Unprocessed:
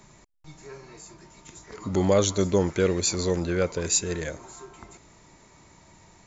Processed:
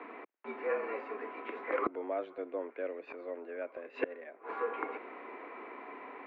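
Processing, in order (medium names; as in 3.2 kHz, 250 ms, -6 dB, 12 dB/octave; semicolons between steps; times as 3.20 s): mistuned SSB +84 Hz 220–2400 Hz; inverted gate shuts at -29 dBFS, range -25 dB; trim +10.5 dB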